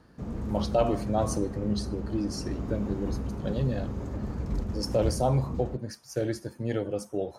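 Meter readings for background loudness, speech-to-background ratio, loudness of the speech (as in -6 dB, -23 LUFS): -35.0 LUFS, 4.0 dB, -31.0 LUFS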